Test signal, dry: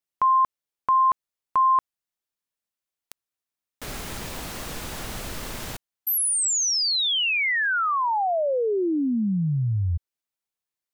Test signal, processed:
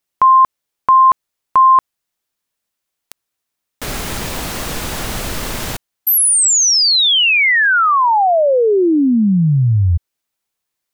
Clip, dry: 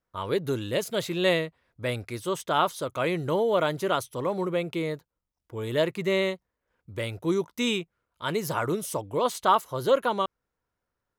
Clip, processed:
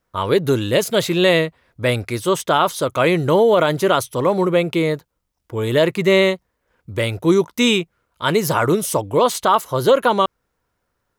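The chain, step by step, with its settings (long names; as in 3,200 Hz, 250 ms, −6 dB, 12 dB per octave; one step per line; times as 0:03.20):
boost into a limiter +15 dB
level −4 dB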